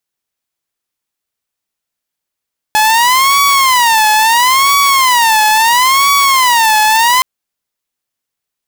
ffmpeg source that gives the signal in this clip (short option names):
-f lavfi -i "aevalsrc='0.596*(2*mod((993*t-137/(2*PI*0.74)*sin(2*PI*0.74*t)),1)-1)':d=4.47:s=44100"